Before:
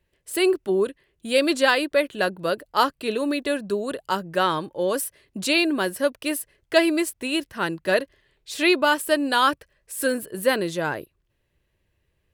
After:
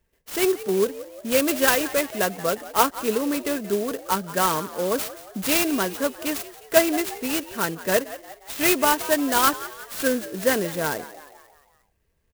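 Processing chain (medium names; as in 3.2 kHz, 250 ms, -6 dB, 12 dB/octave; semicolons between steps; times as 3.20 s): comb 4.4 ms, depth 36%; on a send: frequency-shifting echo 177 ms, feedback 52%, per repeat +68 Hz, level -16 dB; on the sum: sampling jitter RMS 0.067 ms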